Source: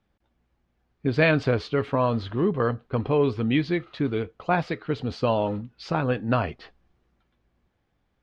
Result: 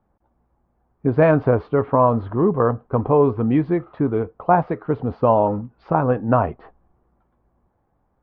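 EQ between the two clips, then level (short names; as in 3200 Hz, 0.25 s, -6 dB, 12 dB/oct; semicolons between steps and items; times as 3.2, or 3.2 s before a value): synth low-pass 970 Hz, resonance Q 1.8; +4.5 dB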